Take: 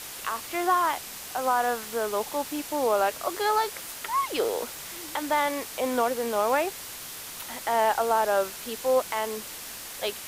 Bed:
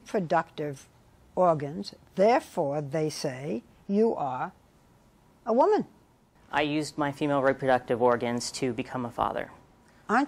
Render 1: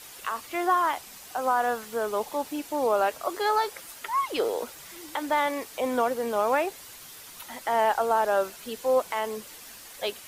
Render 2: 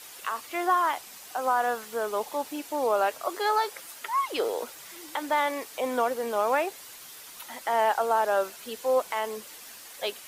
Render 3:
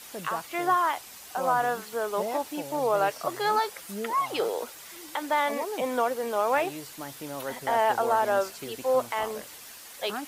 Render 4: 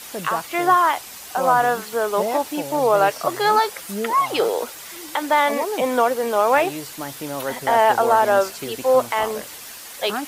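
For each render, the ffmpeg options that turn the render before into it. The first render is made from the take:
-af "afftdn=nr=8:nf=-40"
-af "lowshelf=f=170:g=-11.5"
-filter_complex "[1:a]volume=-11.5dB[a];[0:a][a]amix=inputs=2:normalize=0"
-af "volume=8dB"

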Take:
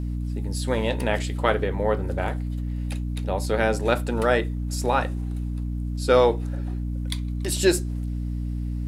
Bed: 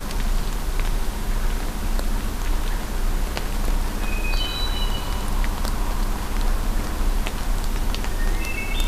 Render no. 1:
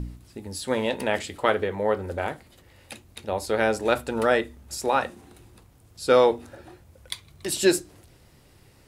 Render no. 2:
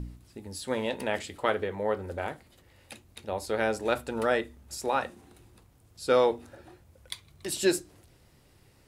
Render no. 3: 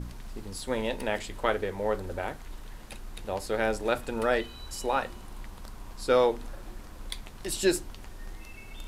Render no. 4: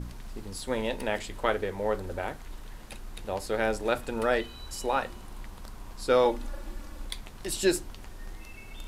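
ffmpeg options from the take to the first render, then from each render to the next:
-af "bandreject=f=60:t=h:w=4,bandreject=f=120:t=h:w=4,bandreject=f=180:t=h:w=4,bandreject=f=240:t=h:w=4,bandreject=f=300:t=h:w=4"
-af "volume=-5dB"
-filter_complex "[1:a]volume=-19.5dB[a];[0:a][a]amix=inputs=2:normalize=0"
-filter_complex "[0:a]asettb=1/sr,asplit=3[a][b][c];[a]atrim=end=6.254[d];[b]atrim=start=6.25:end=7.05,asetpts=PTS-STARTPTS,afade=t=in:d=0.004:c=qsin,afade=t=out:st=0.796:d=0.004:c=qsin,aecho=1:1:3.5:0.65,atrim=end_sample=35280[e];[c]atrim=start=7.046[f];[d][e]acrossfade=d=0.004:c1=hsin:c2=qsin[g];[g][f]acrossfade=d=0.004:c1=qsin:c2=hsin"

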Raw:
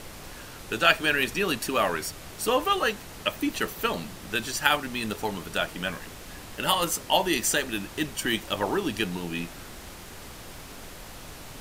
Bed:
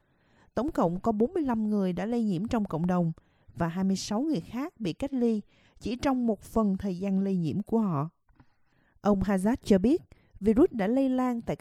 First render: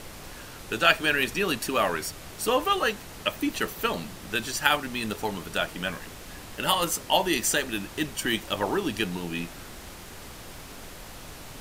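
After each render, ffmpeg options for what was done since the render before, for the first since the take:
-af anull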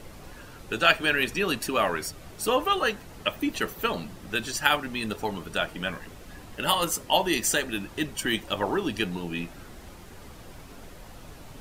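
-af "afftdn=nr=8:nf=-43"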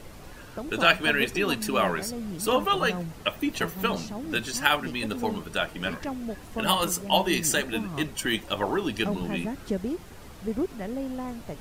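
-filter_complex "[1:a]volume=-7dB[a];[0:a][a]amix=inputs=2:normalize=0"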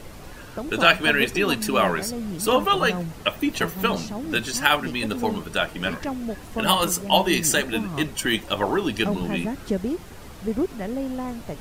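-af "volume=4dB,alimiter=limit=-2dB:level=0:latency=1"

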